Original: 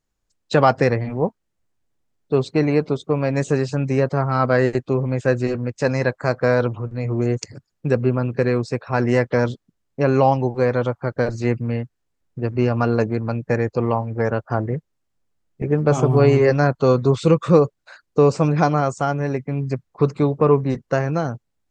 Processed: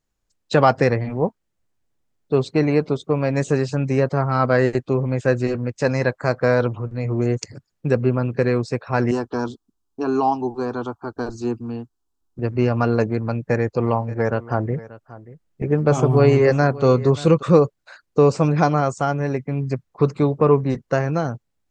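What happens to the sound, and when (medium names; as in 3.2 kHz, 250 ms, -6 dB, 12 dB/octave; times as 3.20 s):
9.11–12.39 s: static phaser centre 550 Hz, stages 6
13.19–17.43 s: delay 583 ms -18 dB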